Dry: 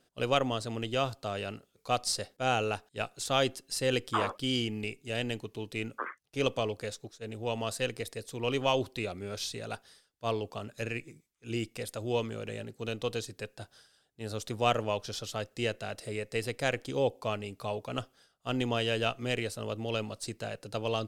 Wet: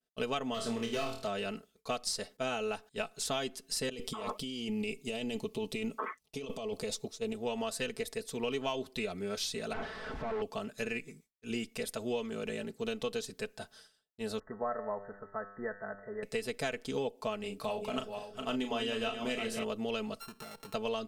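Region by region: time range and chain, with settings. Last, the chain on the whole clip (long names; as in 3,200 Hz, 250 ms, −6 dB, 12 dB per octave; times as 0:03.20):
0:00.54–0:01.27: gain into a clipping stage and back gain 27.5 dB + flutter between parallel walls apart 4.4 metres, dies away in 0.37 s
0:03.89–0:07.33: parametric band 1,600 Hz −12.5 dB 0.43 octaves + compressor whose output falls as the input rises −38 dBFS
0:09.73–0:10.42: sign of each sample alone + low-pass filter 1,600 Hz
0:14.39–0:16.23: linear-phase brick-wall low-pass 2,000 Hz + parametric band 1,300 Hz +7.5 dB 2.2 octaves + tuned comb filter 100 Hz, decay 1 s, mix 70%
0:17.40–0:19.64: feedback delay that plays each chunk backwards 263 ms, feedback 51%, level −9 dB + mains-hum notches 60/120/180/240/300/360/420/480/540 Hz + double-tracking delay 36 ms −7.5 dB
0:20.20–0:20.74: samples sorted by size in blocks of 32 samples + downward compressor, threshold −44 dBFS
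whole clip: downward expander −58 dBFS; comb filter 4.6 ms, depth 76%; downward compressor 6 to 1, threshold −31 dBFS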